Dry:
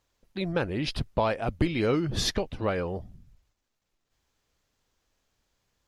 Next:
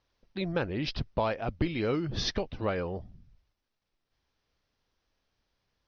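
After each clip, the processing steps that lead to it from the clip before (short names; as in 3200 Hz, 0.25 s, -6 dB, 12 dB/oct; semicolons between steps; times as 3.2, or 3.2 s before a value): steep low-pass 5900 Hz 72 dB/oct; in parallel at 0 dB: vocal rider within 4 dB; on the sum: gain -9 dB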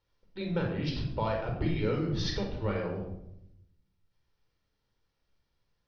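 reverb RT60 0.80 s, pre-delay 20 ms, DRR 1 dB; gain -7 dB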